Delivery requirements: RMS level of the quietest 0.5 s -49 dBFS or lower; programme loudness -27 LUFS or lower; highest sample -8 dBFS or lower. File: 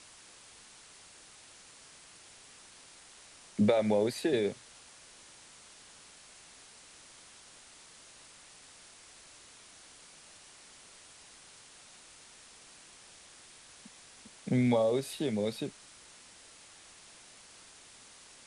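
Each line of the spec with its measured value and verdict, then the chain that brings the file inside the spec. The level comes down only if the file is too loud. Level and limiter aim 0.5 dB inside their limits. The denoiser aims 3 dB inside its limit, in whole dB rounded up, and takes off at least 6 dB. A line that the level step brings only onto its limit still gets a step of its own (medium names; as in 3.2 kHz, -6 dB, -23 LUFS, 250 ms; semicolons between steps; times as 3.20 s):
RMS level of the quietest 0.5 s -55 dBFS: pass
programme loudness -30.5 LUFS: pass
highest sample -14.0 dBFS: pass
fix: none needed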